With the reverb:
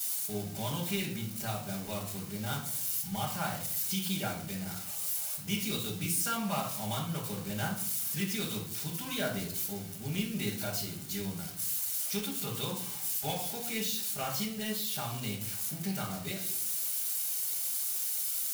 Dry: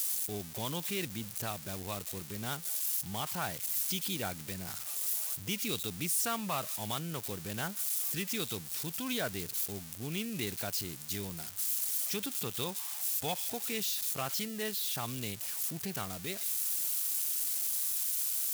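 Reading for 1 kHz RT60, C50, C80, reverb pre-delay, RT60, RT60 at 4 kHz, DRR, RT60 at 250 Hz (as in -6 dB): 0.60 s, 6.5 dB, 10.5 dB, 5 ms, 0.65 s, 0.45 s, -9.0 dB, 0.95 s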